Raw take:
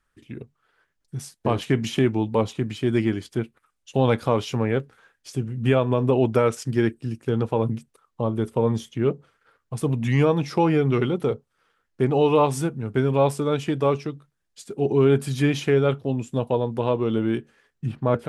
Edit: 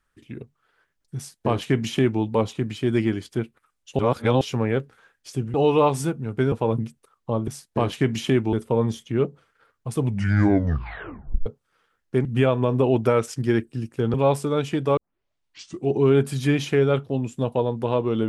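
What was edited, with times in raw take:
1.17–2.22 copy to 8.39
3.99–4.41 reverse
5.54–7.43 swap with 12.11–13.09
9.84 tape stop 1.48 s
13.92 tape start 0.93 s

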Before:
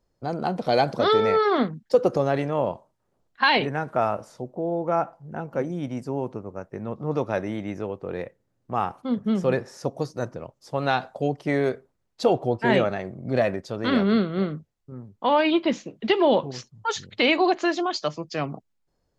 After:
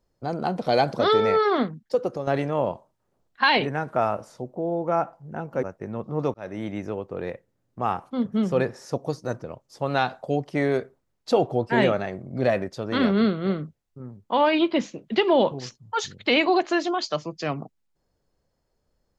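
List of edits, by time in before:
1.45–2.27 fade out linear, to -9.5 dB
5.63–6.55 cut
7.26–7.58 fade in

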